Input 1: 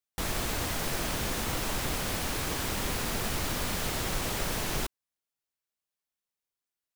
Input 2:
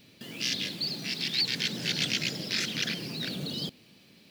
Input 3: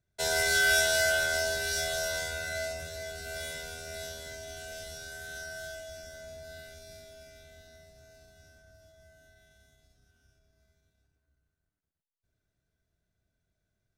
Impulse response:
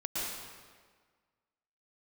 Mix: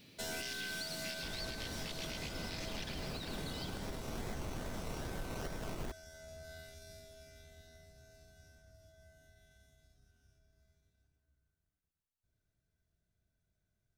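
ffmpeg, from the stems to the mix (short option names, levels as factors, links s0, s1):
-filter_complex "[0:a]lowpass=1000,alimiter=level_in=1.5:limit=0.0631:level=0:latency=1:release=211,volume=0.668,acrusher=samples=21:mix=1:aa=0.000001:lfo=1:lforange=12.6:lforate=2.4,adelay=1050,volume=1.06[s0];[1:a]acompressor=threshold=0.0224:ratio=2.5,volume=0.596,asplit=2[s1][s2];[s2]volume=0.299[s3];[2:a]bass=f=250:g=4,treble=f=4000:g=1,aeval=exprs='(tanh(39.8*val(0)+0.35)-tanh(0.35))/39.8':c=same,volume=0.562,asplit=2[s4][s5];[s5]volume=0.119[s6];[3:a]atrim=start_sample=2205[s7];[s3][s6]amix=inputs=2:normalize=0[s8];[s8][s7]afir=irnorm=-1:irlink=0[s9];[s0][s1][s4][s9]amix=inputs=4:normalize=0,alimiter=level_in=2.51:limit=0.0631:level=0:latency=1:release=472,volume=0.398"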